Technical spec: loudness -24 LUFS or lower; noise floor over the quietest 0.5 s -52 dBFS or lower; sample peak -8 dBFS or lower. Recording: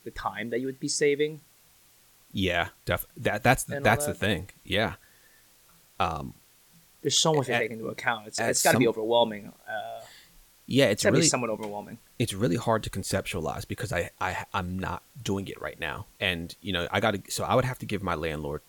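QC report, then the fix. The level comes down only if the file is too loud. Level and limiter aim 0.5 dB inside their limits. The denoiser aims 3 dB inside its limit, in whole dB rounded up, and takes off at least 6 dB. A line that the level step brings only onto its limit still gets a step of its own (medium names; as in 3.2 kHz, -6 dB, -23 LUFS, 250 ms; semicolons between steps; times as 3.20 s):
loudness -27.5 LUFS: pass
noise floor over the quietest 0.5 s -59 dBFS: pass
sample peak -6.5 dBFS: fail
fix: peak limiter -8.5 dBFS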